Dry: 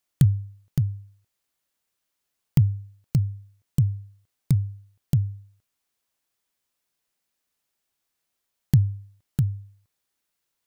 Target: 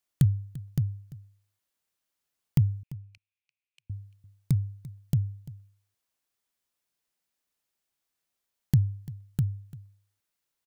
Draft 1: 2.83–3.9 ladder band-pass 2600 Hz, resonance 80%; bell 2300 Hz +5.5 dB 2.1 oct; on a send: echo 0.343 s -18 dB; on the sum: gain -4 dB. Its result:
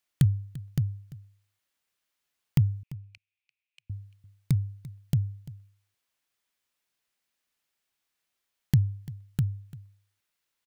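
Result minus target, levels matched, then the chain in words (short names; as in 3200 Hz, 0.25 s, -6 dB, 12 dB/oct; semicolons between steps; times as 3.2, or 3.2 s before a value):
2000 Hz band +5.0 dB
2.83–3.9 ladder band-pass 2600 Hz, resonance 80%; on a send: echo 0.343 s -18 dB; on the sum: gain -4 dB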